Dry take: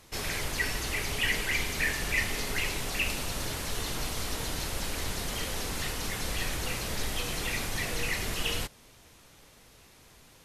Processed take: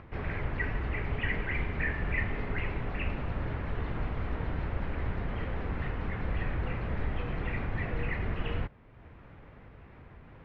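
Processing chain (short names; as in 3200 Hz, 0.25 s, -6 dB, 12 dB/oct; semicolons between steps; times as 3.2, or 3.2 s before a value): LPF 2100 Hz 24 dB/oct; bell 76 Hz +8 dB 3 oct; upward compressor, threshold -41 dBFS; gain -2 dB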